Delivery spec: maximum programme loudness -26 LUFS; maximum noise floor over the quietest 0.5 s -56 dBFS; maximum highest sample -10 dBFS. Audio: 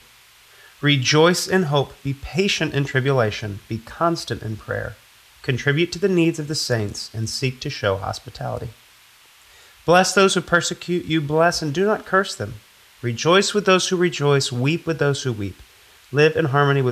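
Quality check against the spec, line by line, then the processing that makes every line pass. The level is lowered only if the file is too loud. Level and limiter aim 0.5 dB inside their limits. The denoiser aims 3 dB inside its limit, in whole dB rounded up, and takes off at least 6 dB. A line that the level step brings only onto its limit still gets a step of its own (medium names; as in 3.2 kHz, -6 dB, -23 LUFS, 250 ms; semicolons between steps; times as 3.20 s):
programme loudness -20.0 LUFS: fail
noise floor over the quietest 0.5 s -51 dBFS: fail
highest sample -3.5 dBFS: fail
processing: trim -6.5 dB; peak limiter -10.5 dBFS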